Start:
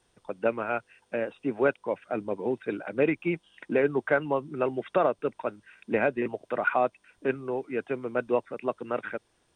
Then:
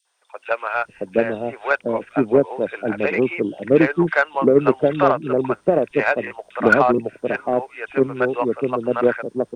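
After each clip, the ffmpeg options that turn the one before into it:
ffmpeg -i in.wav -filter_complex "[0:a]acrossover=split=630|2800[link_01][link_02][link_03];[link_02]adelay=50[link_04];[link_01]adelay=720[link_05];[link_05][link_04][link_03]amix=inputs=3:normalize=0,aeval=exprs='0.237*(cos(1*acos(clip(val(0)/0.237,-1,1)))-cos(1*PI/2))+0.0075*(cos(7*acos(clip(val(0)/0.237,-1,1)))-cos(7*PI/2))':channel_layout=same,dynaudnorm=framelen=130:gausssize=5:maxgain=7dB,volume=5dB" out.wav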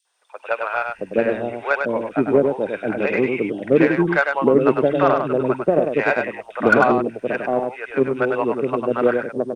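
ffmpeg -i in.wav -af "aecho=1:1:100:0.562,volume=-1dB" out.wav

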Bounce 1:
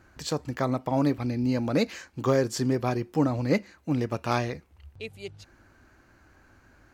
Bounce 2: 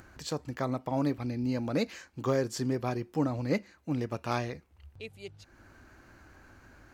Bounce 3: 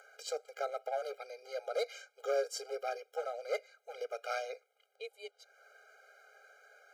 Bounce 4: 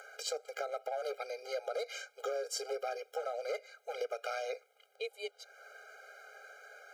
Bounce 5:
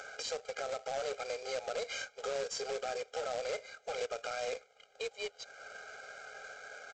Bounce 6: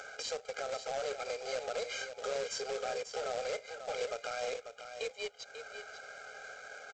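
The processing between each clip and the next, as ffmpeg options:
ffmpeg -i in.wav -af "acompressor=mode=upward:threshold=-41dB:ratio=2.5,volume=-5dB" out.wav
ffmpeg -i in.wav -af "volume=24.5dB,asoftclip=hard,volume=-24.5dB,afreqshift=17,afftfilt=real='re*eq(mod(floor(b*sr/1024/410),2),1)':imag='im*eq(mod(floor(b*sr/1024/410),2),1)':win_size=1024:overlap=0.75" out.wav
ffmpeg -i in.wav -af "alimiter=level_in=6.5dB:limit=-24dB:level=0:latency=1:release=124,volume=-6.5dB,acompressor=threshold=-42dB:ratio=2.5,volume=7dB" out.wav
ffmpeg -i in.wav -af "alimiter=level_in=10dB:limit=-24dB:level=0:latency=1:release=30,volume=-10dB,aresample=16000,acrusher=bits=2:mode=log:mix=0:aa=0.000001,aresample=44100,volume=4.5dB" out.wav
ffmpeg -i in.wav -af "aecho=1:1:542:0.355" out.wav

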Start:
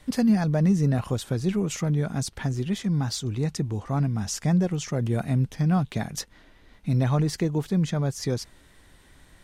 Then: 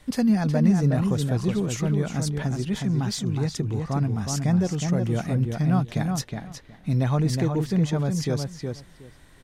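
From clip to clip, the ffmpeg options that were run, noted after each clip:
ffmpeg -i in.wav -filter_complex "[0:a]asplit=2[link_01][link_02];[link_02]adelay=366,lowpass=frequency=3300:poles=1,volume=-4.5dB,asplit=2[link_03][link_04];[link_04]adelay=366,lowpass=frequency=3300:poles=1,volume=0.16,asplit=2[link_05][link_06];[link_06]adelay=366,lowpass=frequency=3300:poles=1,volume=0.16[link_07];[link_01][link_03][link_05][link_07]amix=inputs=4:normalize=0" out.wav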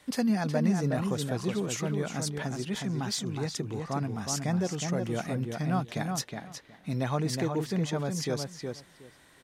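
ffmpeg -i in.wav -af "highpass=frequency=340:poles=1,volume=-1dB" out.wav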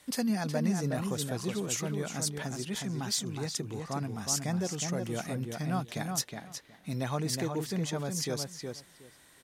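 ffmpeg -i in.wav -af "aemphasis=mode=production:type=cd,volume=-3dB" out.wav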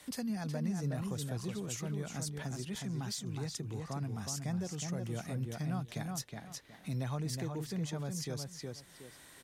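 ffmpeg -i in.wav -filter_complex "[0:a]acrossover=split=130[link_01][link_02];[link_02]acompressor=threshold=-51dB:ratio=2[link_03];[link_01][link_03]amix=inputs=2:normalize=0,volume=3dB" out.wav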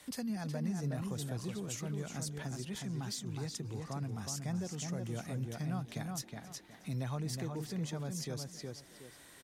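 ffmpeg -i in.wav -filter_complex "[0:a]asplit=4[link_01][link_02][link_03][link_04];[link_02]adelay=269,afreqshift=79,volume=-21dB[link_05];[link_03]adelay=538,afreqshift=158,volume=-27.9dB[link_06];[link_04]adelay=807,afreqshift=237,volume=-34.9dB[link_07];[link_01][link_05][link_06][link_07]amix=inputs=4:normalize=0,volume=-1dB" out.wav

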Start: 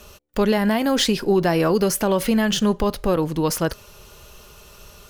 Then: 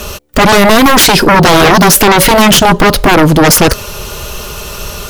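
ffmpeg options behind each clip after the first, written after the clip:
ffmpeg -i in.wav -af "aeval=exprs='0.355*sin(PI/2*3.98*val(0)/0.355)':channel_layout=same,volume=7dB" out.wav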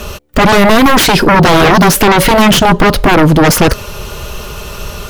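ffmpeg -i in.wav -af "bass=frequency=250:gain=2,treble=frequency=4000:gain=-5,volume=-1.5dB" out.wav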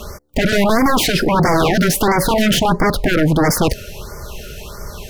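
ffmpeg -i in.wav -af "afftfilt=real='re*(1-between(b*sr/1024,900*pow(3300/900,0.5+0.5*sin(2*PI*1.5*pts/sr))/1.41,900*pow(3300/900,0.5+0.5*sin(2*PI*1.5*pts/sr))*1.41))':imag='im*(1-between(b*sr/1024,900*pow(3300/900,0.5+0.5*sin(2*PI*1.5*pts/sr))/1.41,900*pow(3300/900,0.5+0.5*sin(2*PI*1.5*pts/sr))*1.41))':win_size=1024:overlap=0.75,volume=-7dB" out.wav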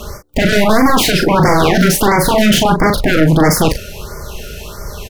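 ffmpeg -i in.wav -filter_complex "[0:a]asplit=2[link_01][link_02];[link_02]adelay=38,volume=-6dB[link_03];[link_01][link_03]amix=inputs=2:normalize=0,volume=2.5dB" out.wav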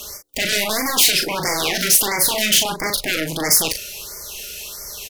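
ffmpeg -i in.wav -af "bass=frequency=250:gain=-9,treble=frequency=4000:gain=1,aexciter=amount=4.8:drive=2.8:freq=2000,volume=-12dB" out.wav

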